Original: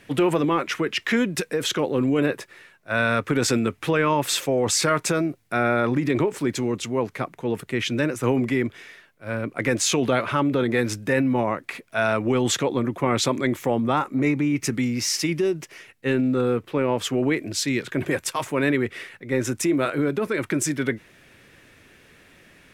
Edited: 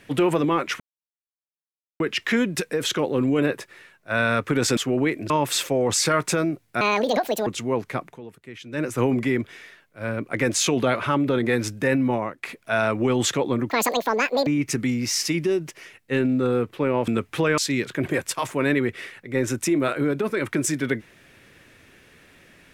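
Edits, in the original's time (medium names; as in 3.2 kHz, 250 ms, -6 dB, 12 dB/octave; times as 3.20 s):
0.80 s: insert silence 1.20 s
3.57–4.07 s: swap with 17.02–17.55 s
5.58–6.72 s: speed 174%
7.34–8.09 s: dip -15 dB, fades 0.12 s
11.33–11.68 s: fade out, to -10 dB
12.95–14.41 s: speed 189%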